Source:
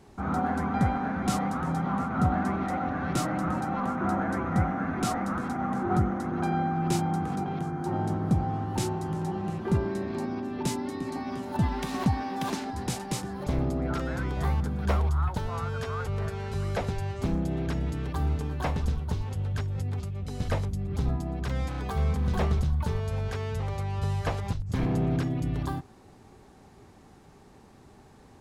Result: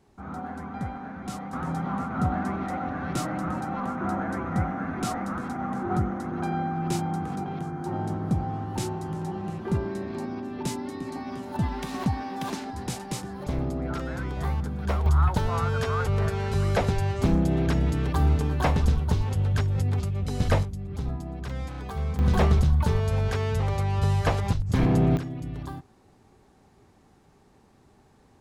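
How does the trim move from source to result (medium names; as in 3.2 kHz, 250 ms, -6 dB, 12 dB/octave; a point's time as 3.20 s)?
-8 dB
from 1.53 s -1 dB
from 15.06 s +6 dB
from 20.63 s -3 dB
from 22.19 s +5.5 dB
from 25.17 s -5 dB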